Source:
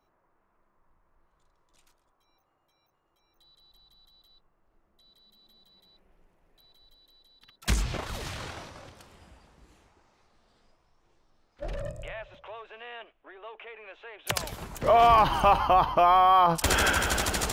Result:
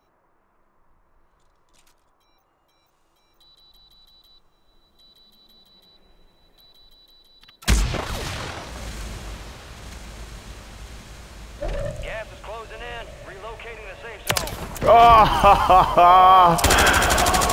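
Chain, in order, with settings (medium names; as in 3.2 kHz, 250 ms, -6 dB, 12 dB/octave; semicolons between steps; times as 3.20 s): echo that smears into a reverb 1286 ms, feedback 73%, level -11.5 dB; trim +7.5 dB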